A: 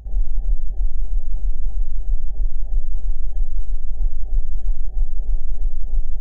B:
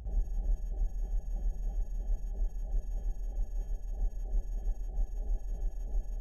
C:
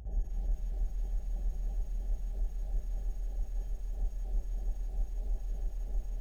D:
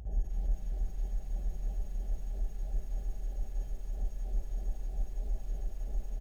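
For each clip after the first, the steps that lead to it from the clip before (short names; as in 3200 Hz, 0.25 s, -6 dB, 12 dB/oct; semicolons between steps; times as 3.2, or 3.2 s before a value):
HPF 53 Hz 12 dB/oct; gain -2.5 dB
lo-fi delay 0.246 s, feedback 55%, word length 9-bit, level -12 dB; gain -1.5 dB
echo 0.457 s -11 dB; gain +1.5 dB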